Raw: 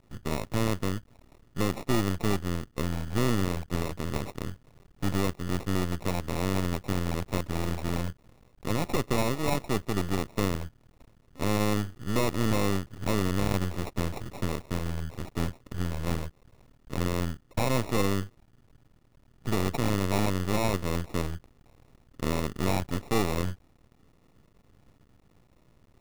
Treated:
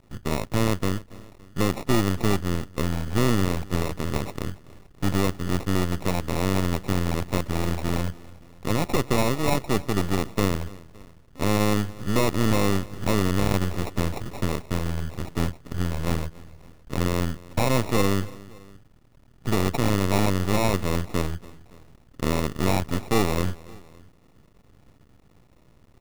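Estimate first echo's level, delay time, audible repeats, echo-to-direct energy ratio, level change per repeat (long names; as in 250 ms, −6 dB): −21.0 dB, 283 ms, 2, −19.5 dB, −4.5 dB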